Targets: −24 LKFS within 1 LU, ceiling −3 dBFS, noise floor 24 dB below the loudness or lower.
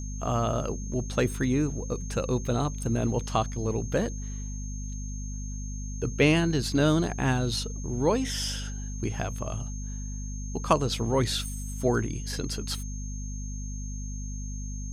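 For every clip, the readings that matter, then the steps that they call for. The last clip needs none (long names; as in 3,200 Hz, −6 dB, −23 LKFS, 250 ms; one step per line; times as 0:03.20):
mains hum 50 Hz; hum harmonics up to 250 Hz; level of the hum −32 dBFS; interfering tone 6,400 Hz; level of the tone −43 dBFS; integrated loudness −29.5 LKFS; sample peak −7.5 dBFS; target loudness −24.0 LKFS
→ hum removal 50 Hz, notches 5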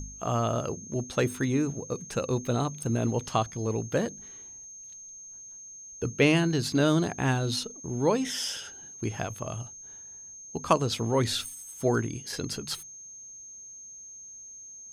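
mains hum none found; interfering tone 6,400 Hz; level of the tone −43 dBFS
→ notch filter 6,400 Hz, Q 30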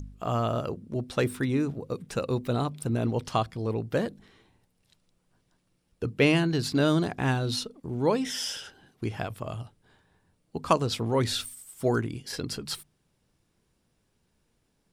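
interfering tone none found; integrated loudness −29.0 LKFS; sample peak −7.0 dBFS; target loudness −24.0 LKFS
→ level +5 dB
brickwall limiter −3 dBFS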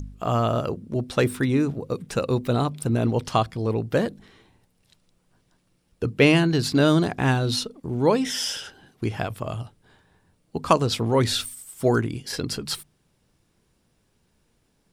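integrated loudness −24.0 LKFS; sample peak −3.0 dBFS; background noise floor −68 dBFS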